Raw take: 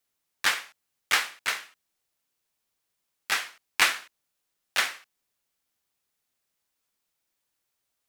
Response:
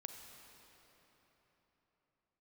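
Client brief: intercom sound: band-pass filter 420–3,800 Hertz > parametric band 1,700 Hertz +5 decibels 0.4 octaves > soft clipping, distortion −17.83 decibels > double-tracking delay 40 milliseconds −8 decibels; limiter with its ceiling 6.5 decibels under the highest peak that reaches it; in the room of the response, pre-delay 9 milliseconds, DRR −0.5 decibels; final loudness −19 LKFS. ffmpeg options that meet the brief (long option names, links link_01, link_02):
-filter_complex "[0:a]alimiter=limit=-13dB:level=0:latency=1,asplit=2[link_01][link_02];[1:a]atrim=start_sample=2205,adelay=9[link_03];[link_02][link_03]afir=irnorm=-1:irlink=0,volume=4.5dB[link_04];[link_01][link_04]amix=inputs=2:normalize=0,highpass=420,lowpass=3800,equalizer=frequency=1700:width_type=o:width=0.4:gain=5,asoftclip=threshold=-14.5dB,asplit=2[link_05][link_06];[link_06]adelay=40,volume=-8dB[link_07];[link_05][link_07]amix=inputs=2:normalize=0,volume=9dB"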